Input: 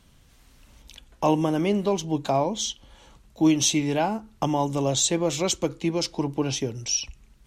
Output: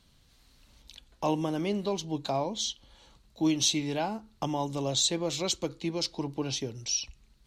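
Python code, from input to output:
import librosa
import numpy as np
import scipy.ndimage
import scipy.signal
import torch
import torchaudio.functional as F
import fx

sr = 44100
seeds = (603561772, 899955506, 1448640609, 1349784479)

y = fx.peak_eq(x, sr, hz=4200.0, db=9.5, octaves=0.51)
y = F.gain(torch.from_numpy(y), -7.0).numpy()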